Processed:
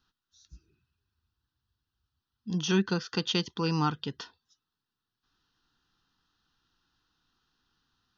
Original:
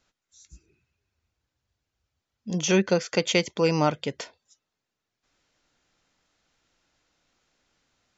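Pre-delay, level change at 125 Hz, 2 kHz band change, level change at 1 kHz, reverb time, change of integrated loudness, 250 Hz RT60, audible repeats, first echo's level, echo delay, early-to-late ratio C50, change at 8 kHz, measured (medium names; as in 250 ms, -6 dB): no reverb, -2.0 dB, -7.0 dB, -4.0 dB, no reverb, -5.0 dB, no reverb, no echo, no echo, no echo, no reverb, no reading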